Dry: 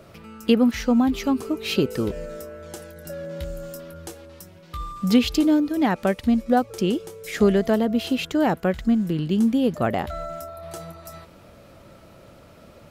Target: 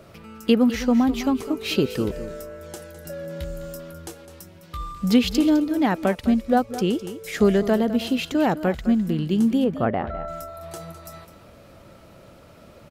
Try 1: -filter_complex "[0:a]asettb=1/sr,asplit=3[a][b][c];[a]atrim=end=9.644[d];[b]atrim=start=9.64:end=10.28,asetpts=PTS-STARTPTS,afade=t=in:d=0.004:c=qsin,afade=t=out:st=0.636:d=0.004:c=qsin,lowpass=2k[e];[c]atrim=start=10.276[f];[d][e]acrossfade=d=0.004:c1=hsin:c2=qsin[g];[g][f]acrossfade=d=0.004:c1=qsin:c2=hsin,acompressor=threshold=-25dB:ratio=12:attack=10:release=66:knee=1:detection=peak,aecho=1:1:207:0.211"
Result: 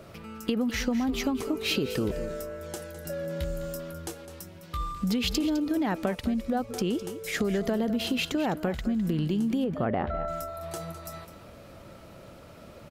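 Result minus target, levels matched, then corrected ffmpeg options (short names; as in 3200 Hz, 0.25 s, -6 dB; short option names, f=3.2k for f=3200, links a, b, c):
compressor: peak gain reduction +13.5 dB
-filter_complex "[0:a]asettb=1/sr,asplit=3[a][b][c];[a]atrim=end=9.644[d];[b]atrim=start=9.64:end=10.28,asetpts=PTS-STARTPTS,afade=t=in:d=0.004:c=qsin,afade=t=out:st=0.636:d=0.004:c=qsin,lowpass=2k[e];[c]atrim=start=10.276[f];[d][e]acrossfade=d=0.004:c1=hsin:c2=qsin[g];[g][f]acrossfade=d=0.004:c1=qsin:c2=hsin,aecho=1:1:207:0.211"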